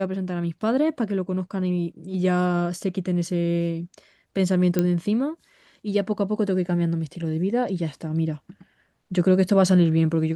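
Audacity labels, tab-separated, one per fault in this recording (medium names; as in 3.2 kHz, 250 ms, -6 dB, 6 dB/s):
4.790000	4.790000	pop -9 dBFS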